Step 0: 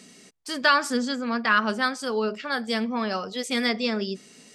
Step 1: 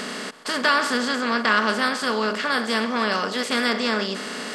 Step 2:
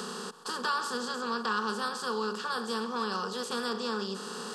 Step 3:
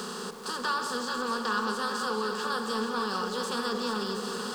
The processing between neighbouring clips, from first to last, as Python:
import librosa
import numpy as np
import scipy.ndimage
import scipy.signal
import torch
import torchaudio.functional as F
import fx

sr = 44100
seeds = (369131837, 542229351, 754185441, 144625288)

y1 = fx.bin_compress(x, sr, power=0.4)
y1 = y1 * librosa.db_to_amplitude(-2.5)
y2 = fx.fixed_phaser(y1, sr, hz=420.0, stages=8)
y2 = fx.band_squash(y2, sr, depth_pct=40)
y2 = y2 * librosa.db_to_amplitude(-7.0)
y3 = y2 + 0.5 * 10.0 ** (-46.0 / 20.0) * np.sign(y2)
y3 = fx.echo_alternate(y3, sr, ms=218, hz=850.0, feedback_pct=81, wet_db=-5.5)